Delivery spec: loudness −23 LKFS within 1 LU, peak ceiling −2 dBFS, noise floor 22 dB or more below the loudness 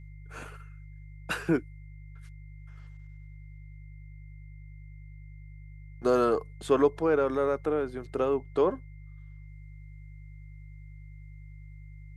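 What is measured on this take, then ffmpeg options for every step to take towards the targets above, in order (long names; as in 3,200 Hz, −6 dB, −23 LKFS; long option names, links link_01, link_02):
mains hum 50 Hz; hum harmonics up to 150 Hz; level of the hum −43 dBFS; interfering tone 2,100 Hz; level of the tone −62 dBFS; integrated loudness −28.0 LKFS; sample peak −12.5 dBFS; target loudness −23.0 LKFS
→ -af "bandreject=frequency=50:width_type=h:width=4,bandreject=frequency=100:width_type=h:width=4,bandreject=frequency=150:width_type=h:width=4"
-af "bandreject=frequency=2100:width=30"
-af "volume=5dB"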